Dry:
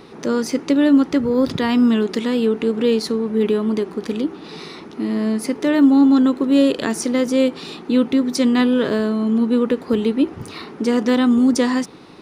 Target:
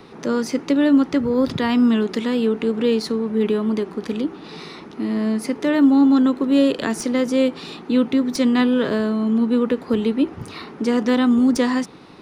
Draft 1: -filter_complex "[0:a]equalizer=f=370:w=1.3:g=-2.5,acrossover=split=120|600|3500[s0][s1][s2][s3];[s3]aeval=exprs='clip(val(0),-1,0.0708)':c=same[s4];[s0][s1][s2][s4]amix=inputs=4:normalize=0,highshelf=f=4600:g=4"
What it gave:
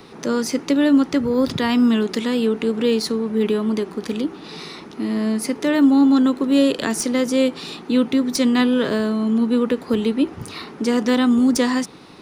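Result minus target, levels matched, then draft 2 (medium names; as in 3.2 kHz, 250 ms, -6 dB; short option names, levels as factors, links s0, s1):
8 kHz band +6.0 dB
-filter_complex "[0:a]equalizer=f=370:w=1.3:g=-2.5,acrossover=split=120|600|3500[s0][s1][s2][s3];[s3]aeval=exprs='clip(val(0),-1,0.0708)':c=same[s4];[s0][s1][s2][s4]amix=inputs=4:normalize=0,highshelf=f=4600:g=-4.5"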